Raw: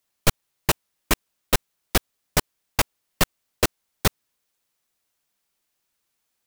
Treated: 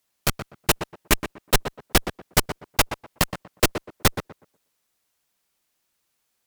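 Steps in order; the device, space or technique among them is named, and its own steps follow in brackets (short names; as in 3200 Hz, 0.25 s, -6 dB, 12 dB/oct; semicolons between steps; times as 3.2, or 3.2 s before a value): rockabilly slapback (tube stage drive 14 dB, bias 0.7; tape echo 0.122 s, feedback 25%, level -7 dB, low-pass 1400 Hz); gain +6 dB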